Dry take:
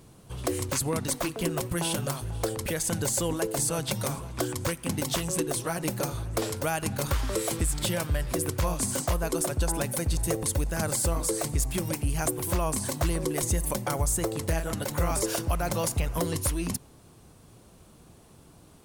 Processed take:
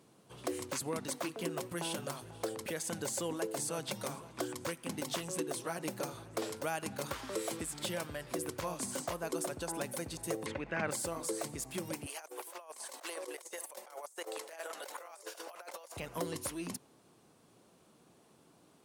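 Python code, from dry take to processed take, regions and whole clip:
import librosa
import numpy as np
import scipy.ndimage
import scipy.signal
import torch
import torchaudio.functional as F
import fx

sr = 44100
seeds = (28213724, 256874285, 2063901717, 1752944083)

y = fx.chain(x, sr, fx.lowpass_res(hz=2300.0, q=2.6),
    fx.env_flatten(amount_pct=50), at=(10.46, 10.91))
y = fx.chain(y, sr, fx.highpass(hz=500.0, slope=24),
    fx.over_compress(threshold_db=-37.0, ratio=-0.5), at=(12.06, 15.97))
y = scipy.signal.sosfilt(scipy.signal.butter(2, 210.0, 'highpass', fs=sr, output='sos'), y)
y = fx.high_shelf(y, sr, hz=8400.0, db=-6.5)
y = y * librosa.db_to_amplitude(-7.0)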